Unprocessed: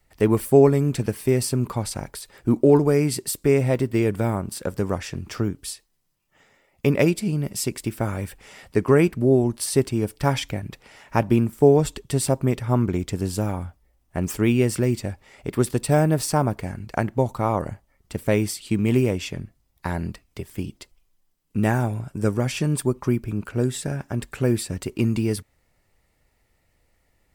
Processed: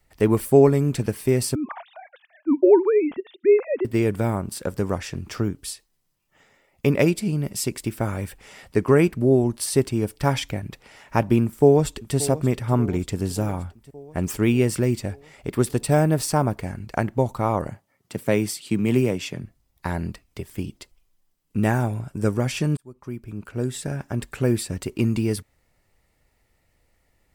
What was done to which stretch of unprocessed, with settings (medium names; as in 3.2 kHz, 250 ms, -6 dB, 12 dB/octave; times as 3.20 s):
1.55–3.85 s: formants replaced by sine waves
11.43–12.16 s: echo throw 580 ms, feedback 65%, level -16 dB
17.68–19.43 s: high-pass 110 Hz 24 dB/octave
22.77–24.05 s: fade in